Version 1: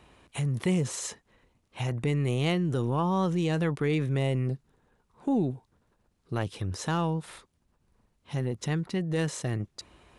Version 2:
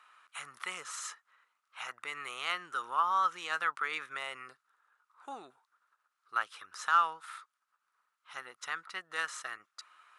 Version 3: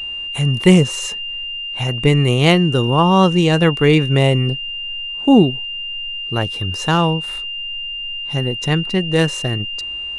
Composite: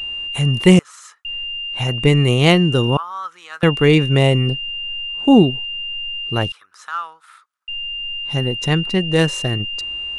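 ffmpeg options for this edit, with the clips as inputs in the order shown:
-filter_complex "[1:a]asplit=3[s0][s1][s2];[2:a]asplit=4[s3][s4][s5][s6];[s3]atrim=end=0.792[s7];[s0]atrim=start=0.788:end=1.252[s8];[s4]atrim=start=1.248:end=2.972[s9];[s1]atrim=start=2.968:end=3.632[s10];[s5]atrim=start=3.628:end=6.522[s11];[s2]atrim=start=6.518:end=7.682[s12];[s6]atrim=start=7.678[s13];[s7][s8]acrossfade=d=0.004:c1=hsin:c2=hsin[s14];[s14][s9]acrossfade=d=0.004:c1=hsin:c2=hsin[s15];[s15][s10]acrossfade=d=0.004:c1=hsin:c2=hsin[s16];[s16][s11]acrossfade=d=0.004:c1=hsin:c2=hsin[s17];[s17][s12]acrossfade=d=0.004:c1=hsin:c2=hsin[s18];[s18][s13]acrossfade=d=0.004:c1=hsin:c2=hsin"

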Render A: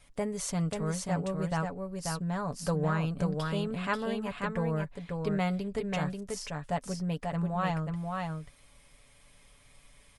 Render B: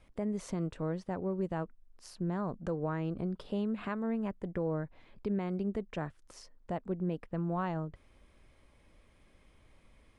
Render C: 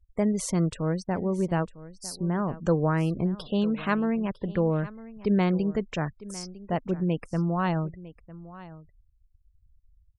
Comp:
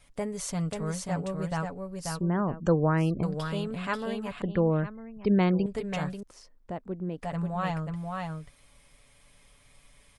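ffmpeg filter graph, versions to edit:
-filter_complex "[2:a]asplit=2[s0][s1];[0:a]asplit=4[s2][s3][s4][s5];[s2]atrim=end=2.212[s6];[s0]atrim=start=2.208:end=3.232[s7];[s3]atrim=start=3.228:end=4.422[s8];[s1]atrim=start=4.418:end=5.662[s9];[s4]atrim=start=5.658:end=6.232[s10];[1:a]atrim=start=6.228:end=7.182[s11];[s5]atrim=start=7.178[s12];[s6][s7]acrossfade=d=0.004:c1=hsin:c2=hsin[s13];[s13][s8]acrossfade=d=0.004:c1=hsin:c2=hsin[s14];[s14][s9]acrossfade=d=0.004:c1=hsin:c2=hsin[s15];[s15][s10]acrossfade=d=0.004:c1=hsin:c2=hsin[s16];[s16][s11]acrossfade=d=0.004:c1=hsin:c2=hsin[s17];[s17][s12]acrossfade=d=0.004:c1=hsin:c2=hsin"

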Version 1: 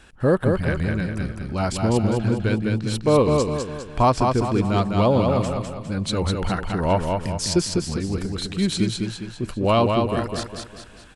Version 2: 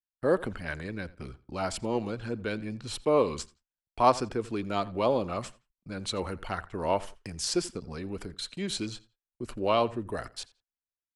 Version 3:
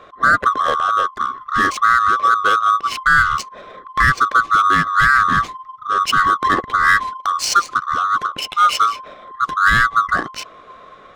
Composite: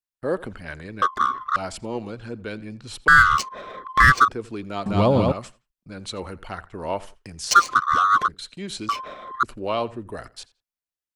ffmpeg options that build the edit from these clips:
-filter_complex "[2:a]asplit=4[s0][s1][s2][s3];[1:a]asplit=6[s4][s5][s6][s7][s8][s9];[s4]atrim=end=1.022[s10];[s0]atrim=start=1.018:end=1.562[s11];[s5]atrim=start=1.558:end=3.082[s12];[s1]atrim=start=3.078:end=4.282[s13];[s6]atrim=start=4.278:end=4.862[s14];[0:a]atrim=start=4.858:end=5.322[s15];[s7]atrim=start=5.318:end=7.512[s16];[s2]atrim=start=7.508:end=8.282[s17];[s8]atrim=start=8.278:end=8.892[s18];[s3]atrim=start=8.888:end=9.432[s19];[s9]atrim=start=9.428[s20];[s10][s11]acrossfade=d=0.004:c1=hsin:c2=hsin[s21];[s21][s12]acrossfade=d=0.004:c1=hsin:c2=hsin[s22];[s22][s13]acrossfade=d=0.004:c1=hsin:c2=hsin[s23];[s23][s14]acrossfade=d=0.004:c1=hsin:c2=hsin[s24];[s24][s15]acrossfade=d=0.004:c1=hsin:c2=hsin[s25];[s25][s16]acrossfade=d=0.004:c1=hsin:c2=hsin[s26];[s26][s17]acrossfade=d=0.004:c1=hsin:c2=hsin[s27];[s27][s18]acrossfade=d=0.004:c1=hsin:c2=hsin[s28];[s28][s19]acrossfade=d=0.004:c1=hsin:c2=hsin[s29];[s29][s20]acrossfade=d=0.004:c1=hsin:c2=hsin"

